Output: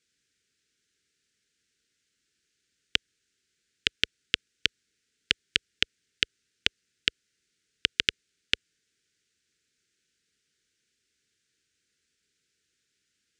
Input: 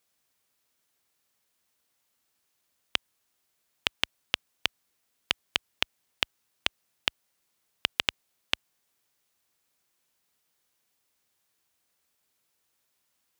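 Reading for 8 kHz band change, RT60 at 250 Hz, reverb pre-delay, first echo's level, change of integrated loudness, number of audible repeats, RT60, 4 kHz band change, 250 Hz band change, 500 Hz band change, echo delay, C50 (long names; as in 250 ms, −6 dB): +2.0 dB, no reverb audible, no reverb audible, no echo audible, +2.5 dB, no echo audible, no reverb audible, +2.5 dB, +2.5 dB, −1.5 dB, no echo audible, no reverb audible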